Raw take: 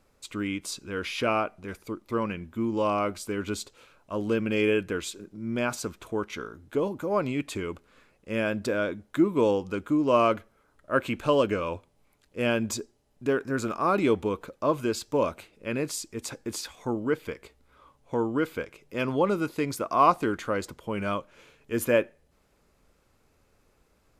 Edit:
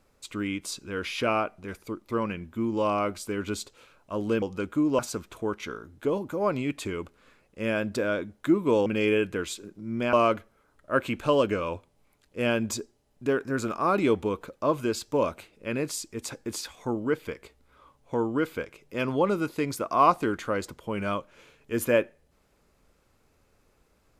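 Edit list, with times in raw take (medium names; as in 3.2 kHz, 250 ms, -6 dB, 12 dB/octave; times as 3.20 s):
4.42–5.69 s: swap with 9.56–10.13 s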